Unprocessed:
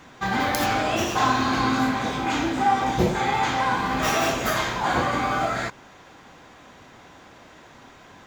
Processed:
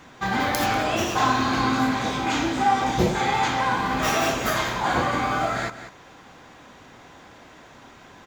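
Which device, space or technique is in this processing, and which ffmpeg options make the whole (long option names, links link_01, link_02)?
ducked delay: -filter_complex "[0:a]asettb=1/sr,asplit=3[link_01][link_02][link_03];[link_01]atrim=end=1.914[link_04];[link_02]atrim=start=1.91:end=3.48,asetpts=PTS-STARTPTS,afade=type=in:duration=0.004:curve=qsin,afade=type=out:start_time=1.566:duration=0.004:curve=qsin,equalizer=frequency=5500:width_type=o:width=1.9:gain=3[link_05];[link_03]atrim=start=3.476[link_06];[link_04][link_05]acrossfade=duration=0.004:curve1=hsin:curve2=qsin[link_07];[link_07][link_06]acrossfade=duration=0.004:curve1=qsin:curve2=hsin,asplit=3[link_08][link_09][link_10];[link_09]adelay=192,volume=-8dB[link_11];[link_10]apad=whole_len=373083[link_12];[link_11][link_12]sidechaincompress=threshold=-27dB:ratio=8:attack=5.6:release=788[link_13];[link_08][link_13]amix=inputs=2:normalize=0"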